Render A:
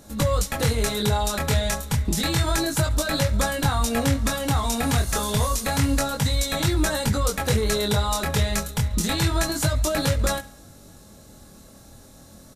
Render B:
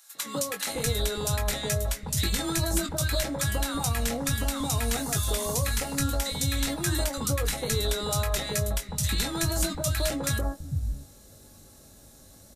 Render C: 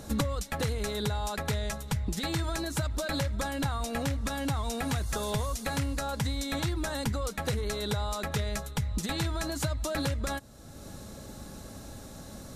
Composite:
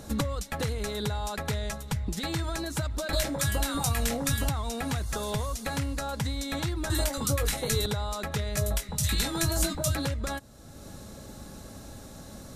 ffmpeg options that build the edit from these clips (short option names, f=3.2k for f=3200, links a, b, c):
-filter_complex "[1:a]asplit=3[a][b][c];[2:a]asplit=4[d][e][f][g];[d]atrim=end=3.132[h];[a]atrim=start=3.128:end=4.492[i];[e]atrim=start=4.488:end=6.902[j];[b]atrim=start=6.898:end=7.862[k];[f]atrim=start=7.858:end=8.572[l];[c]atrim=start=8.568:end=9.952[m];[g]atrim=start=9.948[n];[h][i]acrossfade=d=0.004:c1=hsin:c2=hsin[o];[o][j]acrossfade=d=0.004:c1=hsin:c2=hsin[p];[p][k]acrossfade=d=0.004:c1=hsin:c2=hsin[q];[q][l]acrossfade=d=0.004:c1=hsin:c2=hsin[r];[r][m]acrossfade=d=0.004:c1=hsin:c2=hsin[s];[s][n]acrossfade=d=0.004:c1=hsin:c2=hsin"